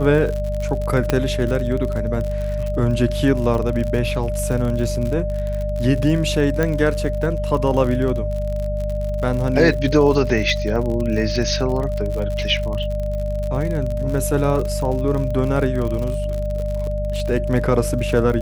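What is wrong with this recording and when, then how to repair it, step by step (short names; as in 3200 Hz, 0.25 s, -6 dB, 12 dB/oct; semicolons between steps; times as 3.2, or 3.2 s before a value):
crackle 60/s -25 dBFS
hum 50 Hz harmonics 4 -24 dBFS
tone 600 Hz -25 dBFS
1.1 pop -4 dBFS
6.63 pop -8 dBFS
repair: de-click; notch 600 Hz, Q 30; de-hum 50 Hz, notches 4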